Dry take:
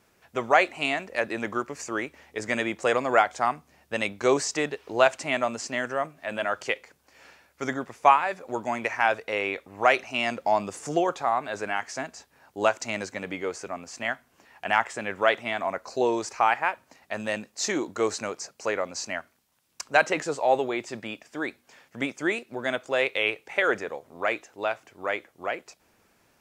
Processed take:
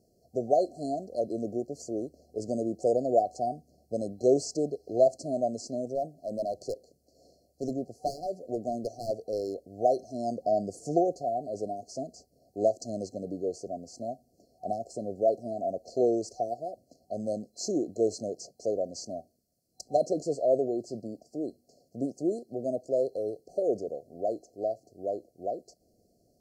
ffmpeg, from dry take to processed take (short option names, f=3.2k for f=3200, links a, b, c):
-filter_complex "[0:a]asettb=1/sr,asplit=3[a][b][c];[a]atrim=end=5.954[d];[b]atrim=start=5.95:end=9.68,asetpts=PTS-STARTPTS,afade=t=in:d=0.004:c=qsin,afade=t=out:st=3.726:d=0.004:c=qsin,volume=21.5dB,asoftclip=hard,volume=-21.5dB[e];[c]atrim=start=9.676[f];[d][e]acrossfade=d=0.004:c1=hsin:c2=qsin[g];[g][f]acrossfade=d=0.004:c1=qsin:c2=hsin,afftfilt=real='re*(1-between(b*sr/4096,750,4100))':imag='im*(1-between(b*sr/4096,750,4100))':win_size=4096:overlap=0.75,highshelf=f=2.5k:g=-8.5"